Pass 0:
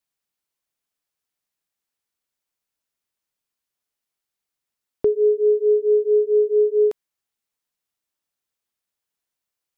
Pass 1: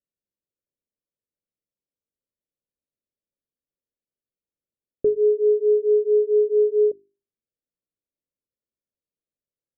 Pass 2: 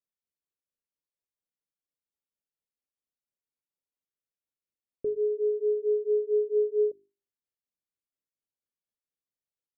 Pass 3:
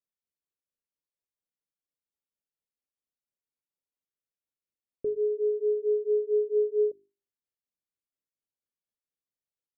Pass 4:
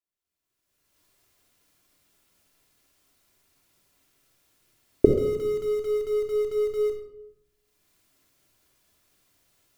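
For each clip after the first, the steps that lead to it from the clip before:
elliptic low-pass filter 580 Hz; mains-hum notches 50/100/150/200/250/300/350/400 Hz
shaped tremolo triangle 4.3 Hz, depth 50%; level −5.5 dB
no processing that can be heard
camcorder AGC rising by 30 dB per second; in parallel at −7.5 dB: comparator with hysteresis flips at −28 dBFS; on the sum: rectangular room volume 2,500 cubic metres, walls furnished, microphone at 3.1 metres; level −4.5 dB

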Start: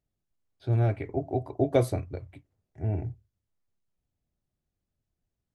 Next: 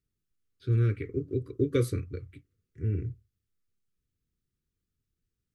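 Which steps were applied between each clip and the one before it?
elliptic band-stop filter 480–1,200 Hz, stop band 40 dB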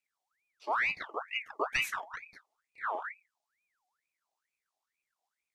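parametric band 5,400 Hz +9.5 dB 2.1 octaves
ring modulator whose carrier an LFO sweeps 1,600 Hz, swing 55%, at 2.2 Hz
level −3.5 dB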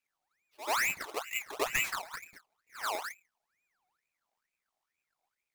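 each half-wave held at its own peak
backwards echo 87 ms −13.5 dB
level −3 dB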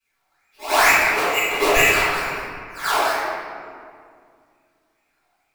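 convolution reverb RT60 2.2 s, pre-delay 3 ms, DRR −18.5 dB
level −4 dB

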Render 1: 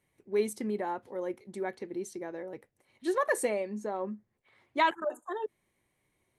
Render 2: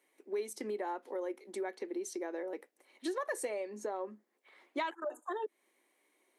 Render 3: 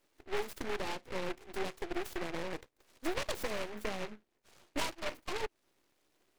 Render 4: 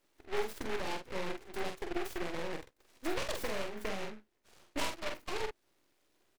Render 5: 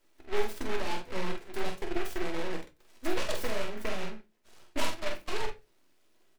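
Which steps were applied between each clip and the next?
Butterworth high-pass 270 Hz 36 dB per octave; dynamic equaliser 5,600 Hz, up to +4 dB, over −58 dBFS, Q 2; downward compressor 4 to 1, threshold −39 dBFS, peak gain reduction 15.5 dB; level +3.5 dB
low-shelf EQ 380 Hz +5.5 dB; half-wave rectification; short delay modulated by noise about 1,400 Hz, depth 0.17 ms; level +2.5 dB
double-tracking delay 46 ms −5 dB; level −1 dB
flanger 0.43 Hz, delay 2 ms, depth 9 ms, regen −66%; on a send at −6.5 dB: convolution reverb RT60 0.25 s, pre-delay 3 ms; on the sum: level +6.5 dB

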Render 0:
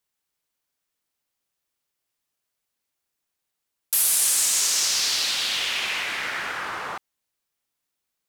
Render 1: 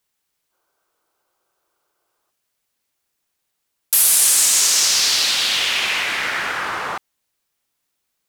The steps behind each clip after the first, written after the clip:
gain on a spectral selection 0:00.52–0:02.30, 320–1,600 Hz +12 dB
level +6.5 dB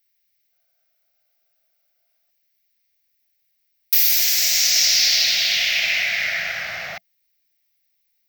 drawn EQ curve 180 Hz 0 dB, 260 Hz −16 dB, 410 Hz −20 dB, 670 Hz +4 dB, 980 Hz −21 dB, 2,100 Hz +7 dB, 3,100 Hz 0 dB, 5,600 Hz +6 dB, 10,000 Hz −23 dB, 15,000 Hz +13 dB
level −3 dB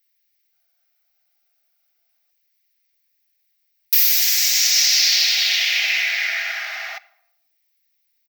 Butterworth high-pass 670 Hz 96 dB per octave
comb filter 4.9 ms, depth 39%
rectangular room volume 3,200 cubic metres, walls furnished, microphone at 0.5 metres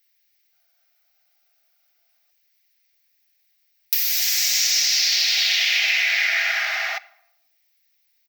downward compressor 6 to 1, threshold −21 dBFS, peak gain reduction 10 dB
high-shelf EQ 11,000 Hz −3.5 dB
level +5 dB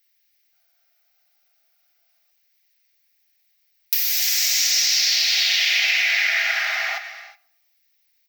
reverb whose tail is shaped and stops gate 390 ms flat, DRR 10 dB

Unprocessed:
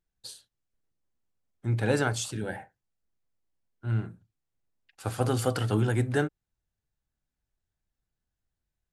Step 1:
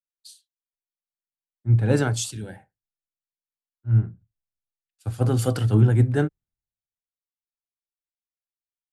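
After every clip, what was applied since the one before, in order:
low-shelf EQ 320 Hz +11.5 dB
multiband upward and downward expander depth 100%
level −3.5 dB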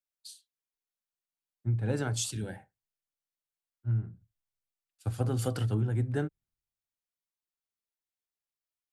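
downward compressor, threshold −25 dBFS, peak gain reduction 12.5 dB
level −1.5 dB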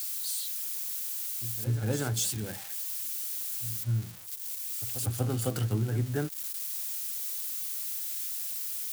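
spike at every zero crossing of −28 dBFS
backwards echo 243 ms −12.5 dB

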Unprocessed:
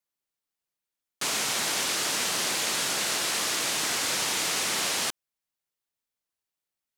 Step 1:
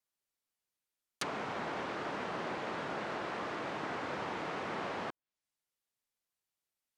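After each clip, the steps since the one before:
treble cut that deepens with the level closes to 1,200 Hz, closed at −28.5 dBFS
level −2 dB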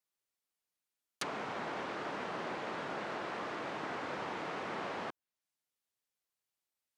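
low-shelf EQ 95 Hz −7 dB
level −1 dB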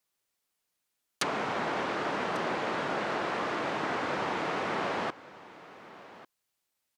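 single-tap delay 1,145 ms −18 dB
level +8 dB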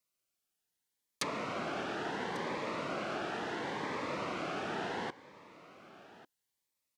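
phaser whose notches keep moving one way rising 0.72 Hz
level −3.5 dB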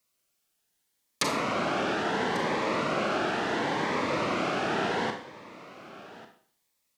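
four-comb reverb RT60 0.52 s, combs from 28 ms, DRR 5 dB
level +8 dB

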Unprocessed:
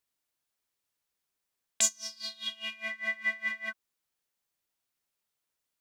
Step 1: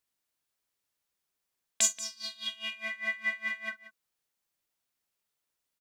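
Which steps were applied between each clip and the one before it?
multi-tap delay 43/181 ms −14.5/−16 dB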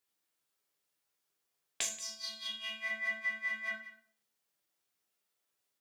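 high-pass filter 180 Hz 6 dB per octave
downward compressor 3 to 1, threshold −34 dBFS, peak gain reduction 10.5 dB
rectangular room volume 45 cubic metres, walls mixed, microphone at 0.66 metres
level −2 dB

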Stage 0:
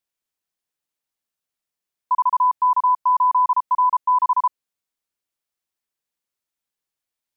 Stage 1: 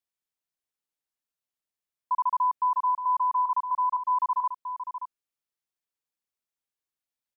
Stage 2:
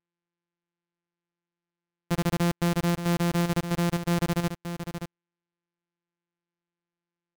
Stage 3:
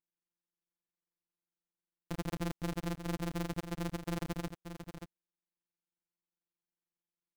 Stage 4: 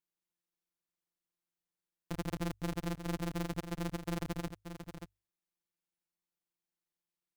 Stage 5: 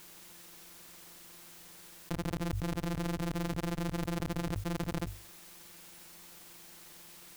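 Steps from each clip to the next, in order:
slap from a distant wall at 99 metres, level −9 dB; level −7 dB
samples sorted by size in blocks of 256 samples
amplitude modulation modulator 150 Hz, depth 80%; level −8 dB
mains-hum notches 50/100 Hz
envelope flattener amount 100%

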